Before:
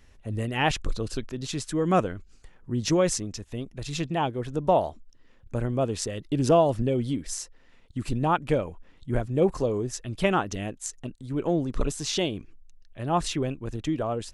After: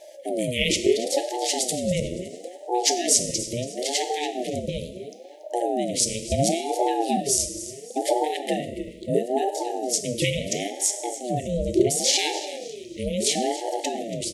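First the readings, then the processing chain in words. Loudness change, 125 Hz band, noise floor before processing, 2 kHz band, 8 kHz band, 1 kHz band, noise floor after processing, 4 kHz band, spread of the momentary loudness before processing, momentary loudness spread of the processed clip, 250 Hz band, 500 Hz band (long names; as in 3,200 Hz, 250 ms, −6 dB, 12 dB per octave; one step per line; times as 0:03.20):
+3.0 dB, −4.0 dB, −55 dBFS, +2.0 dB, +12.0 dB, +1.5 dB, −43 dBFS, +8.5 dB, 12 LU, 12 LU, 0.0 dB, +2.0 dB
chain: high-shelf EQ 5,300 Hz +12 dB
coupled-rooms reverb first 0.79 s, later 2.7 s, DRR 8 dB
in parallel at −2 dB: downward compressor 6 to 1, threshold −33 dBFS, peak gain reduction 18 dB
on the sum: brick-wall band-stop 310–2,200 Hz
on a send: repeating echo 282 ms, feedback 34%, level −15 dB
on the sum: ring modulator whose carrier an LFO sweeps 470 Hz, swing 30%, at 0.73 Hz
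level +4.5 dB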